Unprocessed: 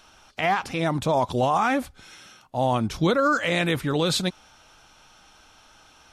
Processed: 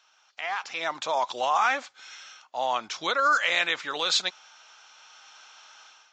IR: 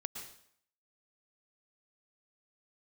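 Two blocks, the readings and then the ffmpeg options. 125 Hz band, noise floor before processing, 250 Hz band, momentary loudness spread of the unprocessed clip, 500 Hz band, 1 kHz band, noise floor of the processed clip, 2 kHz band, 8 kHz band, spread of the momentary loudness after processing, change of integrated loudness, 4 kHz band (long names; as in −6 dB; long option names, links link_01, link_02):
below −25 dB, −55 dBFS, −19.5 dB, 7 LU, −8.0 dB, −1.5 dB, −63 dBFS, +1.5 dB, 0.0 dB, 16 LU, −2.5 dB, +2.0 dB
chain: -af "dynaudnorm=framelen=450:gausssize=3:maxgain=13dB,highpass=970,volume=-8dB" -ar 16000 -c:a aac -b:a 64k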